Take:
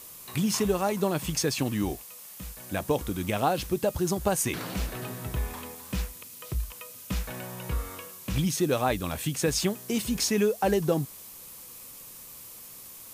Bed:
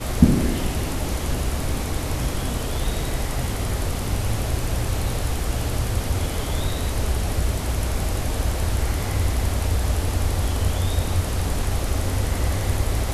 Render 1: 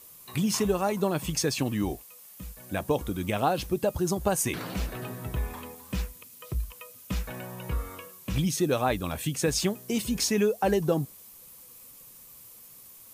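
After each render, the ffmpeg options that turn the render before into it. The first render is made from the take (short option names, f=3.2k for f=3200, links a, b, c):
-af "afftdn=nr=7:nf=-46"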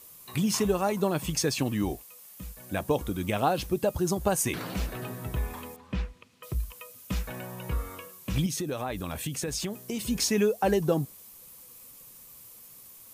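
-filter_complex "[0:a]asettb=1/sr,asplit=3[a][b][c];[a]atrim=end=5.764[d];[b]atrim=start=5.76:end=6.43,asetpts=PTS-STARTPTS,afade=t=in:d=0.004:c=qsin,afade=t=out:st=0.666:d=0.004:c=qsin,lowpass=3.2k[e];[c]atrim=start=6.426[f];[d][e]acrossfade=d=0.004:c1=hsin:c2=qsin[g];[g][f]acrossfade=d=0.004:c1=qsin:c2=hsin,asettb=1/sr,asplit=3[h][i][j];[h]atrim=end=8.464[k];[i]atrim=start=8.46:end=10.02,asetpts=PTS-STARTPTS,afade=t=in:d=0.004:c=qsin,afade=t=out:st=1.556:d=0.004:c=qsin,acompressor=threshold=-28dB:ratio=6:attack=3.2:release=140:knee=1:detection=peak[l];[j]atrim=start=10.016[m];[k][l]acrossfade=d=0.004:c1=hsin:c2=qsin[n];[n][m]acrossfade=d=0.004:c1=qsin:c2=hsin"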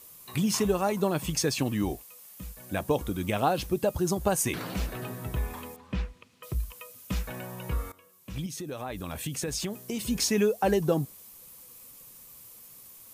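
-filter_complex "[0:a]asplit=2[a][b];[a]atrim=end=7.92,asetpts=PTS-STARTPTS,afade=t=out:st=7.916:d=0.004:c=hsin:silence=0.133352[c];[b]atrim=start=7.92,asetpts=PTS-STARTPTS,afade=t=in:d=1.48:silence=0.133352[d];[c][d]concat=n=2:v=0:a=1"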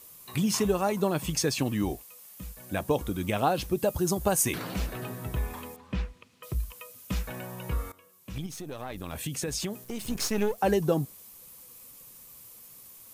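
-filter_complex "[0:a]asettb=1/sr,asplit=3[a][b][c];[a]atrim=end=3.784[d];[b]atrim=start=3.78:end=4.58,asetpts=PTS-STARTPTS,afade=t=in:d=0.004:c=qsin,afade=t=out:st=0.796:d=0.004:c=qsin,highshelf=f=7.8k:g=5.5[e];[c]atrim=start=4.576[f];[d][e]acrossfade=d=0.004:c1=hsin:c2=qsin[g];[g][f]acrossfade=d=0.004:c1=qsin:c2=hsin,asettb=1/sr,asplit=3[h][i][j];[h]atrim=end=8.384[k];[i]atrim=start=8.38:end=9.13,asetpts=PTS-STARTPTS,afade=t=in:d=0.004:c=qsin,afade=t=out:st=0.746:d=0.004:c=qsin,aeval=exprs='if(lt(val(0),0),0.447*val(0),val(0))':c=same[l];[j]atrim=start=9.126[m];[k][l]acrossfade=d=0.004:c1=hsin:c2=qsin[n];[n][m]acrossfade=d=0.004:c1=qsin:c2=hsin,asettb=1/sr,asplit=3[o][p][q];[o]atrim=end=9.844[r];[p]atrim=start=9.84:end=10.58,asetpts=PTS-STARTPTS,afade=t=in:d=0.004:c=qsin,afade=t=out:st=0.736:d=0.004:c=qsin,aeval=exprs='if(lt(val(0),0),0.251*val(0),val(0))':c=same[s];[q]atrim=start=10.576[t];[r][s]acrossfade=d=0.004:c1=hsin:c2=qsin[u];[u][t]acrossfade=d=0.004:c1=qsin:c2=hsin"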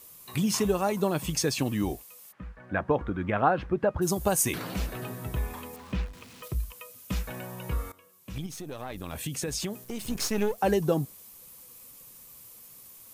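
-filter_complex "[0:a]asplit=3[a][b][c];[a]afade=t=out:st=2.31:d=0.02[d];[b]lowpass=f=1.6k:t=q:w=2.2,afade=t=in:st=2.31:d=0.02,afade=t=out:st=4.01:d=0.02[e];[c]afade=t=in:st=4.01:d=0.02[f];[d][e][f]amix=inputs=3:normalize=0,asettb=1/sr,asplit=3[g][h][i];[g]atrim=end=5.734[j];[h]atrim=start=5.73:end=6.48,asetpts=PTS-STARTPTS,afade=t=in:d=0.004:c=qsin,afade=t=out:st=0.746:d=0.004:c=qsin,aeval=exprs='val(0)+0.5*0.00531*sgn(val(0))':c=same[k];[i]atrim=start=6.476[l];[j][k]acrossfade=d=0.004:c1=hsin:c2=qsin[m];[m][l]acrossfade=d=0.004:c1=qsin:c2=hsin"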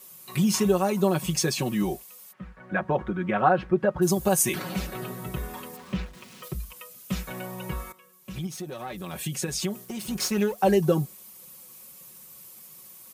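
-af "highpass=69,aecho=1:1:5.4:0.85"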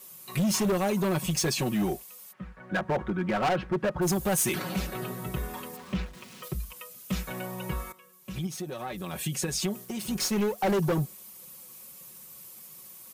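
-af "volume=22.5dB,asoftclip=hard,volume=-22.5dB"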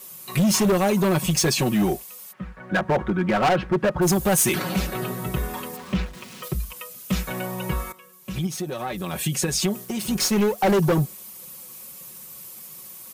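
-af "volume=6.5dB"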